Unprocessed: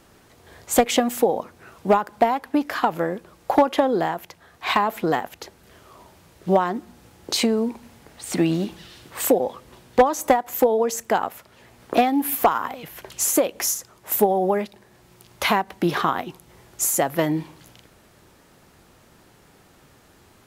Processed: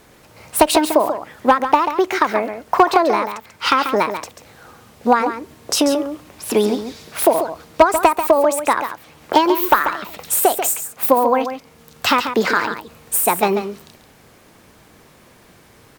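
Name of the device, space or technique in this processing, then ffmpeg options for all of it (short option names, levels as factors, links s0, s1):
nightcore: -af "asetrate=56448,aresample=44100,aecho=1:1:139:0.355,volume=1.68"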